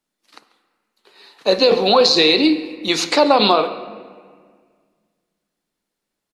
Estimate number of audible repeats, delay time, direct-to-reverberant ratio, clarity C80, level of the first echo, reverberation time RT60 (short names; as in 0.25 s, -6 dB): 1, 0.14 s, 10.5 dB, 13.0 dB, -19.5 dB, 1.8 s